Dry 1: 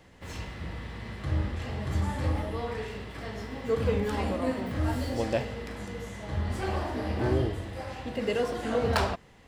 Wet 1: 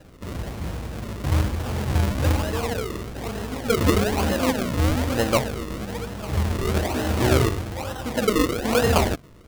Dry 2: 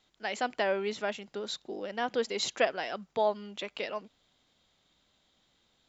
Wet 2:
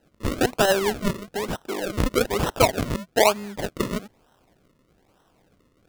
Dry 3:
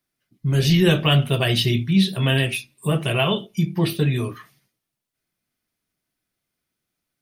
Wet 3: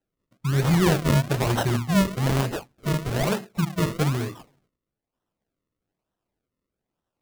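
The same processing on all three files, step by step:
decimation with a swept rate 38×, swing 100% 1.1 Hz; match loudness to -24 LUFS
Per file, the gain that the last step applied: +7.5, +9.5, -3.0 dB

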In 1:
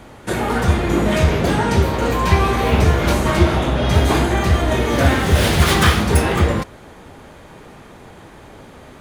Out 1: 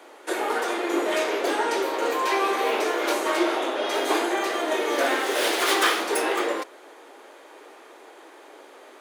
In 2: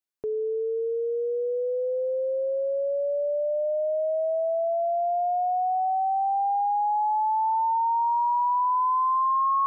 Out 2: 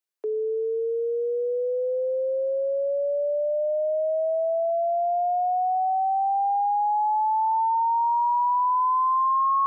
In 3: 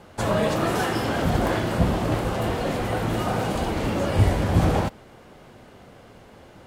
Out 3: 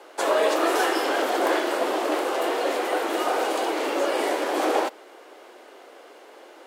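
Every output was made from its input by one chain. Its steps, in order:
steep high-pass 310 Hz 48 dB/oct; match loudness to -24 LUFS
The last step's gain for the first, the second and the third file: -4.0, +1.5, +3.0 dB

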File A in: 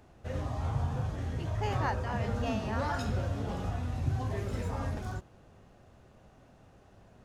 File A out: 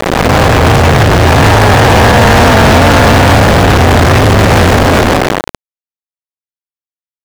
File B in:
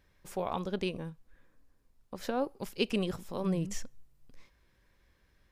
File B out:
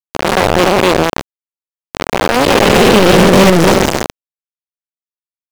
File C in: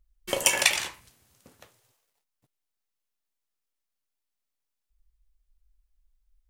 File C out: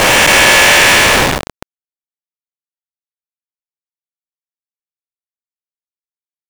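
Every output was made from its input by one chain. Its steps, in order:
time blur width 0.998 s; bell 1700 Hz +5.5 dB 0.21 oct; companded quantiser 2-bit; overdrive pedal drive 31 dB, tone 3000 Hz, clips at -24.5 dBFS; normalise peaks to -1.5 dBFS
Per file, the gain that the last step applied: +23.0, +23.0, +23.0 dB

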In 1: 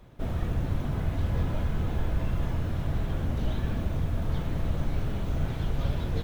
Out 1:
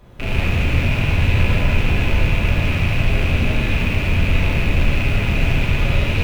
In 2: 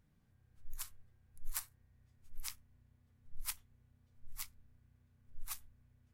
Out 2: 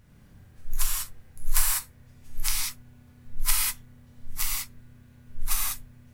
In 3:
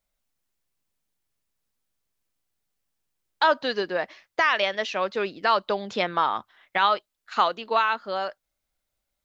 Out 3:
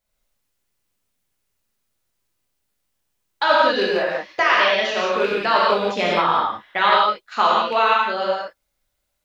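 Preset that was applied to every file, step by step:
rattling part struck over -36 dBFS, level -22 dBFS; non-linear reverb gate 0.22 s flat, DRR -5.5 dB; normalise peaks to -3 dBFS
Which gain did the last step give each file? +4.0, +13.0, 0.0 dB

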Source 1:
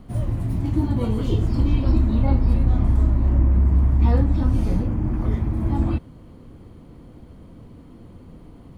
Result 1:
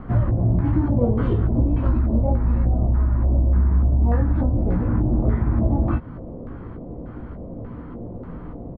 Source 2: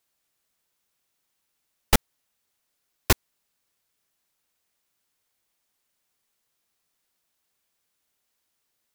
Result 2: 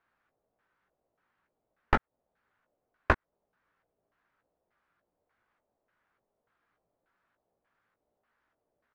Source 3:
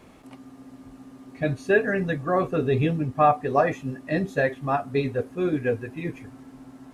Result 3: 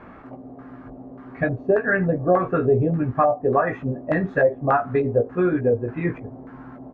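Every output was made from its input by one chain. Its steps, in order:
compressor 12:1, threshold -24 dBFS; LFO low-pass square 1.7 Hz 620–1500 Hz; doubler 17 ms -7 dB; normalise peaks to -6 dBFS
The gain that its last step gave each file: +7.5, +3.5, +5.5 dB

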